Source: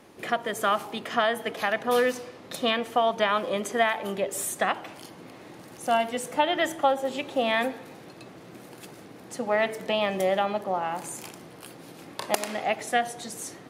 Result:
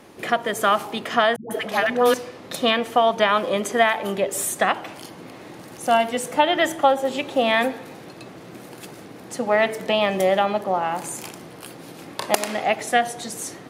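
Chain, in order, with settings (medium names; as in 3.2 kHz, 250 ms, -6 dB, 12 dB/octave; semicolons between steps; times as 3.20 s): 1.36–2.14 s: phase dispersion highs, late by 146 ms, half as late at 400 Hz; trim +5.5 dB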